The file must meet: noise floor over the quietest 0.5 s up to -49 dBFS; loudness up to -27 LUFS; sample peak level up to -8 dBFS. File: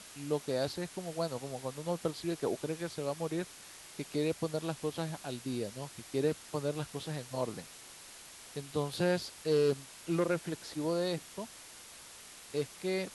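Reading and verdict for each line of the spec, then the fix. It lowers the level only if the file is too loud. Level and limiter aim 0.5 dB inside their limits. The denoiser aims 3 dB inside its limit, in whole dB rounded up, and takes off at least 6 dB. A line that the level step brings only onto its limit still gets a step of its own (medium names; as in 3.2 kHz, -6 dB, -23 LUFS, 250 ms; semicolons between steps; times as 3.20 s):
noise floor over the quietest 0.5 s -52 dBFS: pass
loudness -36.0 LUFS: pass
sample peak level -18.5 dBFS: pass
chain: none needed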